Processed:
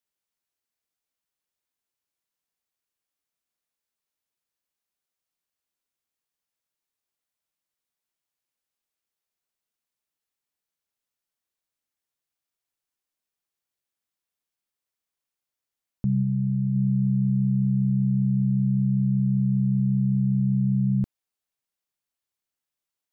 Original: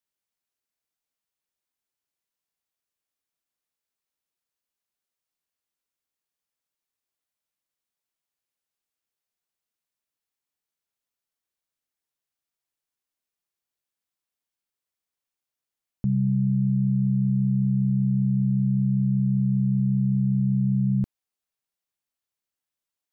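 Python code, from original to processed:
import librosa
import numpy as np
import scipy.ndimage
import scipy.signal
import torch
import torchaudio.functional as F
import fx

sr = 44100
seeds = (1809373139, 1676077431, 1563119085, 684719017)

y = fx.peak_eq(x, sr, hz=370.0, db=-4.0, octaves=2.5, at=(16.22, 16.74), fade=0.02)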